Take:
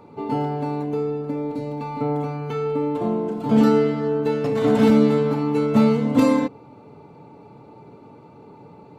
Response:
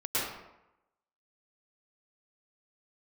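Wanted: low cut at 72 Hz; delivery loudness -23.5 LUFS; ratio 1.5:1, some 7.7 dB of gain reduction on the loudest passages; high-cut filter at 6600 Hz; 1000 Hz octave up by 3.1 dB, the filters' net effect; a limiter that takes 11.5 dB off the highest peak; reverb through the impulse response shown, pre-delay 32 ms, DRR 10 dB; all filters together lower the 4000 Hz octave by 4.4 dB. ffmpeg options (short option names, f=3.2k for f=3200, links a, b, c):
-filter_complex "[0:a]highpass=72,lowpass=6.6k,equalizer=f=1k:t=o:g=4,equalizer=f=4k:t=o:g=-5.5,acompressor=threshold=-33dB:ratio=1.5,alimiter=limit=-24dB:level=0:latency=1,asplit=2[a][b];[1:a]atrim=start_sample=2205,adelay=32[c];[b][c]afir=irnorm=-1:irlink=0,volume=-19dB[d];[a][d]amix=inputs=2:normalize=0,volume=8.5dB"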